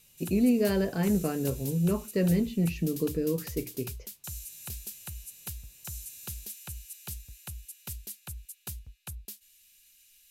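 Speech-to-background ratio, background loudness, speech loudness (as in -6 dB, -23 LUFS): 12.5 dB, -41.0 LUFS, -28.5 LUFS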